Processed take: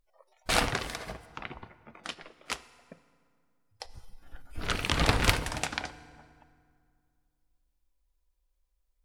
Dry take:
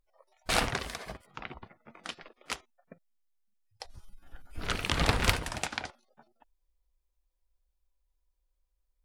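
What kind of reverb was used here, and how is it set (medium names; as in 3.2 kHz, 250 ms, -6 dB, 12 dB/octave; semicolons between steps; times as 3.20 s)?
FDN reverb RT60 2.2 s, low-frequency decay 1.2×, high-frequency decay 0.65×, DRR 15 dB; trim +1.5 dB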